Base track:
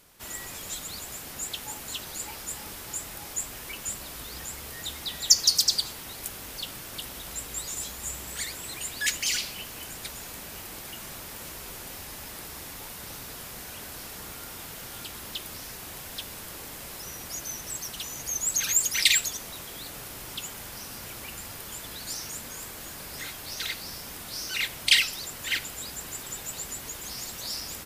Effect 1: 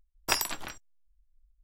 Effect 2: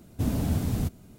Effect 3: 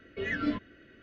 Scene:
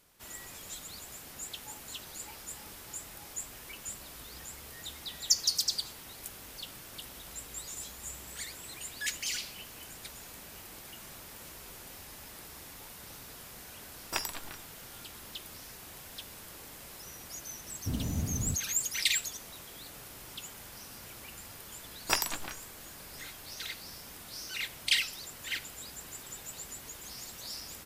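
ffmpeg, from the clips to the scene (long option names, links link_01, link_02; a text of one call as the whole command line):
ffmpeg -i bed.wav -i cue0.wav -i cue1.wav -filter_complex "[1:a]asplit=2[link_01][link_02];[0:a]volume=-7.5dB[link_03];[2:a]lowshelf=frequency=340:gain=5[link_04];[link_01]atrim=end=1.63,asetpts=PTS-STARTPTS,volume=-6.5dB,afade=type=in:duration=0.004:curve=hsin,afade=type=out:start_time=1.626:duration=0.004:curve=hsin,adelay=13840[link_05];[link_04]atrim=end=1.18,asetpts=PTS-STARTPTS,volume=-11dB,afade=type=in:duration=0.004:curve=hsin,afade=type=out:start_time=1.176:duration=0.004:curve=hsin,adelay=17670[link_06];[link_02]atrim=end=1.63,asetpts=PTS-STARTPTS,volume=-1.5dB,afade=type=in:duration=0.004:curve=hsin,afade=type=out:start_time=1.626:duration=0.004:curve=hsin,adelay=21810[link_07];[link_03][link_05][link_06][link_07]amix=inputs=4:normalize=0" out.wav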